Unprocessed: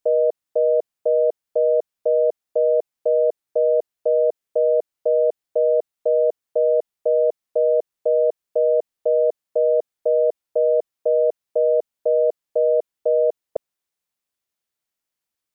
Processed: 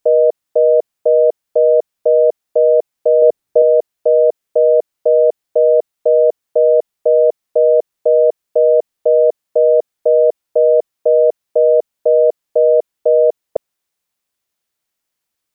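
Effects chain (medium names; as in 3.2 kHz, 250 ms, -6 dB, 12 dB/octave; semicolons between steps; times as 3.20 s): 3.22–3.62 s: bass shelf 360 Hz +8 dB; trim +7 dB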